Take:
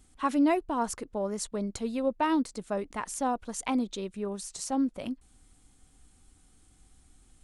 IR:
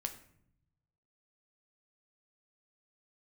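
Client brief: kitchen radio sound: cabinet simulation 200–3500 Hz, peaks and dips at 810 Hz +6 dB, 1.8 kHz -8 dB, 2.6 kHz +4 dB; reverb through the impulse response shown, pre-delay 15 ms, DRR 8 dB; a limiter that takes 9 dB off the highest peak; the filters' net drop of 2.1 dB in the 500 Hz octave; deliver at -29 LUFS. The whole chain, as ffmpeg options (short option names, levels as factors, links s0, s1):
-filter_complex "[0:a]equalizer=f=500:t=o:g=-3.5,alimiter=level_in=1.19:limit=0.0631:level=0:latency=1,volume=0.841,asplit=2[s0][s1];[1:a]atrim=start_sample=2205,adelay=15[s2];[s1][s2]afir=irnorm=-1:irlink=0,volume=0.422[s3];[s0][s3]amix=inputs=2:normalize=0,highpass=200,equalizer=f=810:t=q:w=4:g=6,equalizer=f=1800:t=q:w=4:g=-8,equalizer=f=2600:t=q:w=4:g=4,lowpass=f=3500:w=0.5412,lowpass=f=3500:w=1.3066,volume=2"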